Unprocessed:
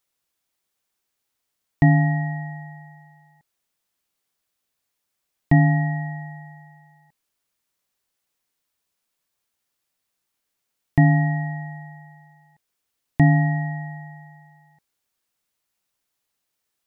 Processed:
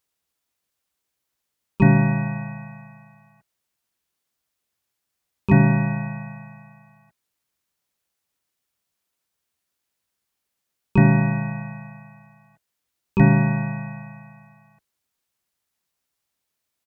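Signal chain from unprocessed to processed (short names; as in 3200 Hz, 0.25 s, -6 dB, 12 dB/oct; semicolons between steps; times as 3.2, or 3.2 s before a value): harmoniser -4 st -4 dB, +5 st -1 dB; HPF 40 Hz; low shelf 83 Hz +7.5 dB; gain -4 dB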